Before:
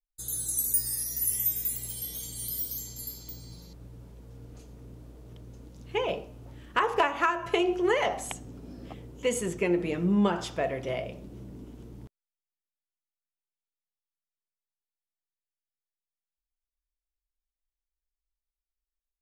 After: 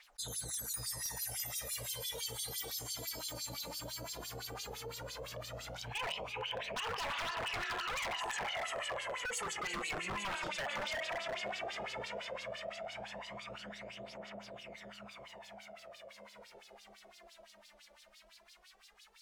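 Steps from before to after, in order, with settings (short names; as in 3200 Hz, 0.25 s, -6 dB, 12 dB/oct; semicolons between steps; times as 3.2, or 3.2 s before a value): diffused feedback echo 0.476 s, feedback 52%, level -7.5 dB; LFO band-pass sine 5.9 Hz 490–4700 Hz; phaser 0.14 Hz, delay 3.5 ms, feedback 58%; limiter -28 dBFS, peak gain reduction 16 dB; wavefolder -36 dBFS; bell 350 Hz -13 dB 1 oct; fast leveller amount 70%; gain +3.5 dB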